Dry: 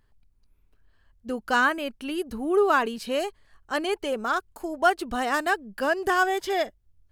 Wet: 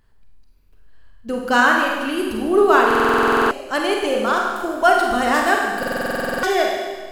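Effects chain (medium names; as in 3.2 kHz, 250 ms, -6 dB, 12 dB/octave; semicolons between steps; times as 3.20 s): Schroeder reverb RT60 1.5 s, combs from 33 ms, DRR -0.5 dB; buffer glitch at 2.86/5.78 s, samples 2048, times 13; trim +5 dB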